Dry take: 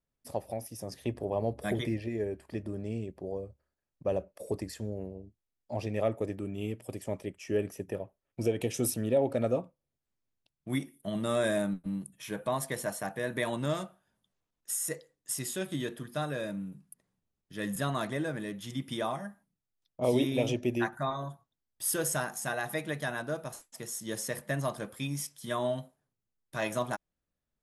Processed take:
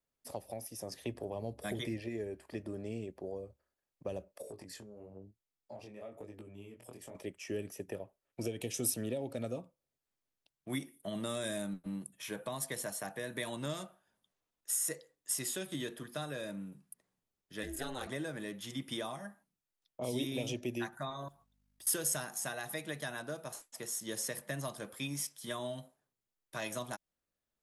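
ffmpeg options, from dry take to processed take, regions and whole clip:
ffmpeg -i in.wav -filter_complex "[0:a]asettb=1/sr,asplit=3[link_01][link_02][link_03];[link_01]atrim=end=4.424[link_04];[link_02]atrim=start=4.42:end=7.15,asetpts=PTS-STARTPTS,afade=type=in:duration=0.004:curve=qsin,afade=type=out:start_time=2.726:duration=0.004:curve=qsin,equalizer=frequency=120:width_type=o:width=1.7:gain=4.5,acompressor=threshold=-38dB:ratio=8:attack=3.2:release=140:knee=1:detection=peak,flanger=delay=18:depth=6.4:speed=1[link_05];[link_03]atrim=start=7.146[link_06];[link_04][link_05]acrossfade=duration=0.004:curve1=hsin:curve2=qsin[link_07];[link_07][link_06]acrossfade=duration=0.004:curve1=qsin:curve2=hsin,asettb=1/sr,asplit=3[link_08][link_09][link_10];[link_08]atrim=end=17.634[link_11];[link_09]atrim=start=17.63:end=18.07,asetpts=PTS-STARTPTS,afade=type=in:duration=0.004:curve=qsin,afade=type=out:start_time=0.436:duration=0.004:curve=qsin,asuperstop=centerf=1100:order=4:qfactor=4.8,aeval=exprs='val(0)*sin(2*PI*130*n/s)':channel_layout=same[link_12];[link_10]atrim=start=18.066[link_13];[link_11][link_12]acrossfade=duration=0.004:curve1=hsin:curve2=qsin[link_14];[link_14][link_13]acrossfade=duration=0.004:curve1=qsin:curve2=hsin,asettb=1/sr,asplit=3[link_15][link_16][link_17];[link_15]atrim=end=21.284[link_18];[link_16]atrim=start=21.28:end=21.87,asetpts=PTS-STARTPTS,afade=type=in:duration=0.004:curve=qsin,afade=type=out:start_time=0.586:duration=0.004:curve=qsin,acompressor=threshold=-52dB:ratio=6:attack=3.2:release=140:knee=1:detection=peak,aeval=exprs='val(0)+0.000398*(sin(2*PI*50*n/s)+sin(2*PI*2*50*n/s)/2+sin(2*PI*3*50*n/s)/3+sin(2*PI*4*50*n/s)/4+sin(2*PI*5*50*n/s)/5)':channel_layout=same,acrusher=bits=6:mode=log:mix=0:aa=0.000001[link_19];[link_17]atrim=start=21.866[link_20];[link_18][link_19]acrossfade=duration=0.004:curve1=hsin:curve2=qsin[link_21];[link_21][link_20]acrossfade=duration=0.004:curve1=qsin:curve2=hsin,bass=frequency=250:gain=-8,treble=frequency=4000:gain=0,acrossover=split=240|3000[link_22][link_23][link_24];[link_23]acompressor=threshold=-39dB:ratio=6[link_25];[link_22][link_25][link_24]amix=inputs=3:normalize=0" out.wav

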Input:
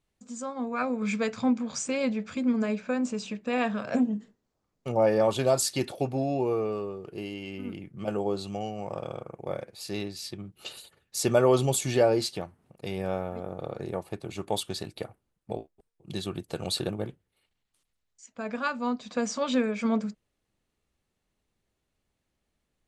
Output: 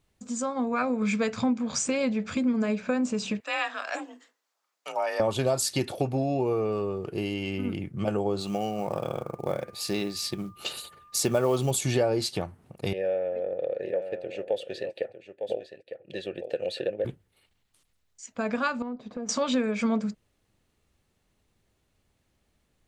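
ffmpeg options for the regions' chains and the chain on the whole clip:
ffmpeg -i in.wav -filter_complex "[0:a]asettb=1/sr,asplit=3[link_01][link_02][link_03];[link_01]atrim=end=3.404[link_04];[link_02]atrim=start=3.4:end=5.2,asetpts=PTS-STARTPTS,afade=type=in:duration=0.004:curve=qsin,afade=type=out:start_time=1.796:duration=0.004:curve=qsin,highpass=1000,afreqshift=41[link_05];[link_03]atrim=start=5.196[link_06];[link_04][link_05]acrossfade=duration=0.004:curve1=hsin:curve2=qsin[link_07];[link_07][link_06]acrossfade=duration=0.004:curve1=qsin:curve2=hsin,asettb=1/sr,asplit=3[link_08][link_09][link_10];[link_08]atrim=end=8.404[link_11];[link_09]atrim=start=8.4:end=11.71,asetpts=PTS-STARTPTS,afade=type=in:duration=0.004:curve=qsin,afade=type=out:start_time=3.306:duration=0.004:curve=qsin,equalizer=frequency=100:width=7.3:gain=-14.5,aeval=exprs='val(0)+0.00112*sin(2*PI*1200*n/s)':channel_layout=same,acrusher=bits=7:mode=log:mix=0:aa=0.000001[link_12];[link_10]atrim=start=11.706[link_13];[link_11][link_12]acrossfade=duration=0.004:curve1=hsin:curve2=qsin[link_14];[link_14][link_13]acrossfade=duration=0.004:curve1=qsin:curve2=hsin,asettb=1/sr,asplit=3[link_15][link_16][link_17];[link_15]atrim=end=12.934[link_18];[link_16]atrim=start=12.93:end=17.05,asetpts=PTS-STARTPTS,afade=type=in:duration=0.004:curve=qsin,afade=type=out:start_time=4.116:duration=0.004:curve=qsin,acontrast=85,asplit=3[link_19][link_20][link_21];[link_19]bandpass=frequency=530:width_type=q:width=8,volume=0dB[link_22];[link_20]bandpass=frequency=1840:width_type=q:width=8,volume=-6dB[link_23];[link_21]bandpass=frequency=2480:width_type=q:width=8,volume=-9dB[link_24];[link_22][link_23][link_24]amix=inputs=3:normalize=0,aecho=1:1:904:0.282,atrim=end_sample=181692[link_25];[link_17]atrim=start=17.046[link_26];[link_18][link_25]acrossfade=duration=0.004:curve1=hsin:curve2=qsin[link_27];[link_27][link_26]acrossfade=duration=0.004:curve1=qsin:curve2=hsin,asettb=1/sr,asplit=3[link_28][link_29][link_30];[link_28]atrim=end=18.824[link_31];[link_29]atrim=start=18.82:end=19.29,asetpts=PTS-STARTPTS,afade=type=in:duration=0.004:curve=qsin,afade=type=out:start_time=0.466:duration=0.004:curve=qsin,aeval=exprs='if(lt(val(0),0),0.447*val(0),val(0))':channel_layout=same,bandpass=frequency=330:width_type=q:width=0.57,acompressor=threshold=-39dB:ratio=5:attack=3.2:release=140:knee=1:detection=peak[link_32];[link_30]atrim=start=19.286[link_33];[link_31][link_32]acrossfade=duration=0.004:curve1=hsin:curve2=qsin[link_34];[link_34][link_33]acrossfade=duration=0.004:curve1=qsin:curve2=hsin,acompressor=threshold=-33dB:ratio=2.5,equalizer=frequency=93:width_type=o:width=0.88:gain=4,volume=7dB" out.wav

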